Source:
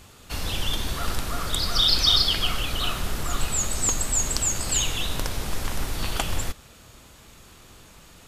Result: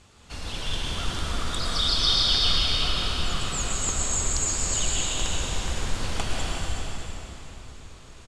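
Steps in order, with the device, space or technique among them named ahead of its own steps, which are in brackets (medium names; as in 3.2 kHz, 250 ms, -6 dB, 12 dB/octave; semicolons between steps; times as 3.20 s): low-pass 8.9 kHz 24 dB/octave; cave (delay 370 ms -10 dB; reverberation RT60 3.6 s, pre-delay 105 ms, DRR -3.5 dB); trim -6 dB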